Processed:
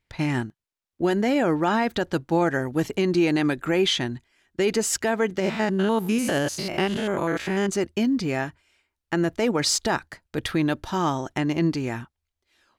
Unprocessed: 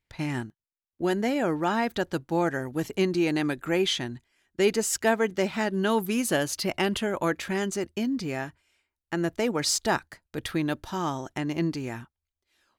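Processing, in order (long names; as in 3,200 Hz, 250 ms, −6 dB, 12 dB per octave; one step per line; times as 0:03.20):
0:05.40–0:07.69: spectrum averaged block by block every 100 ms
high-shelf EQ 9,400 Hz −8 dB
brickwall limiter −17.5 dBFS, peak gain reduction 8 dB
level +5.5 dB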